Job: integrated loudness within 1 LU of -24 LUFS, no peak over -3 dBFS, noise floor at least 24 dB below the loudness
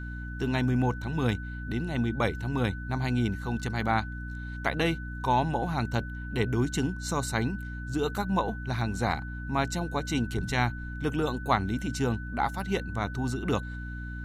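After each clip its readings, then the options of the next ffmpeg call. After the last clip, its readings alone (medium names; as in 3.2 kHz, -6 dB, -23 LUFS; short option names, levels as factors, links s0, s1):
hum 60 Hz; highest harmonic 300 Hz; hum level -35 dBFS; steady tone 1.5 kHz; tone level -42 dBFS; loudness -30.0 LUFS; peak level -10.5 dBFS; loudness target -24.0 LUFS
-> -af "bandreject=f=60:t=h:w=6,bandreject=f=120:t=h:w=6,bandreject=f=180:t=h:w=6,bandreject=f=240:t=h:w=6,bandreject=f=300:t=h:w=6"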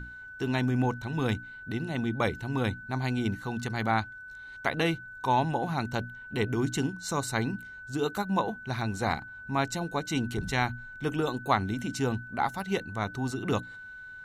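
hum not found; steady tone 1.5 kHz; tone level -42 dBFS
-> -af "bandreject=f=1500:w=30"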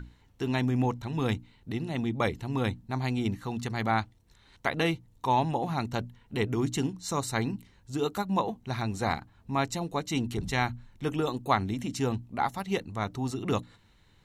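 steady tone not found; loudness -31.0 LUFS; peak level -10.5 dBFS; loudness target -24.0 LUFS
-> -af "volume=2.24"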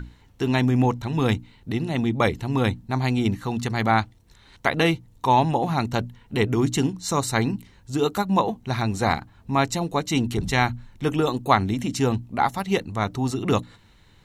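loudness -24.0 LUFS; peak level -3.5 dBFS; noise floor -54 dBFS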